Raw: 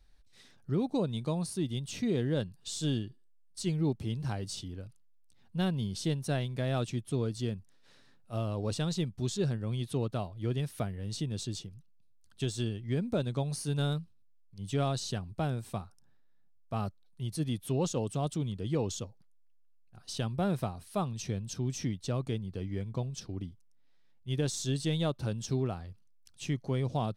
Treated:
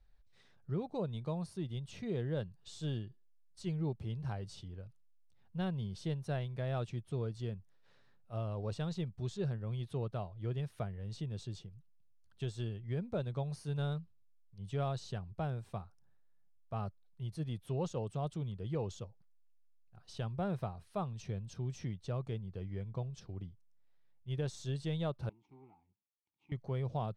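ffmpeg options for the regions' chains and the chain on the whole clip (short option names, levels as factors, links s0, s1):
-filter_complex "[0:a]asettb=1/sr,asplit=3[s0][s1][s2];[s0]atrim=end=25.294[s3];[s1]atrim=start=25.29:end=26.52,asetpts=PTS-STARTPTS,afade=t=in:d=0.004:c=qsin,afade=t=out:st=1.226:d=0.004:c=qsin,aeval=exprs='if(lt(val(0),0),0.251*val(0),val(0))':c=same,asplit=3[s4][s5][s6];[s4]bandpass=f=300:t=q:w=8,volume=1[s7];[s5]bandpass=f=870:t=q:w=8,volume=0.501[s8];[s6]bandpass=f=2240:t=q:w=8,volume=0.355[s9];[s7][s8][s9]amix=inputs=3:normalize=0[s10];[s2]atrim=start=26.516[s11];[s3][s10]acrossfade=d=0.004:c1=hsin:c2=qsin[s12];[s12][s11]acrossfade=d=0.004:c1=qsin:c2=hsin,lowpass=f=1700:p=1,equalizer=f=270:w=2.3:g=-10,volume=0.668"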